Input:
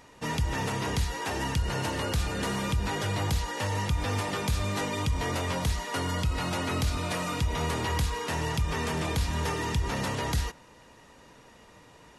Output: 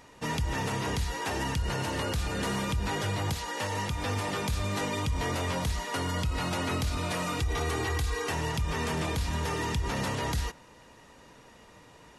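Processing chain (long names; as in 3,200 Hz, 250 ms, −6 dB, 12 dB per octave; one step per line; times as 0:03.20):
0:03.33–0:04.08: high-pass filter 280 Hz → 99 Hz 6 dB per octave
0:07.39–0:08.32: comb filter 2.6 ms, depth 69%
brickwall limiter −21.5 dBFS, peak gain reduction 6.5 dB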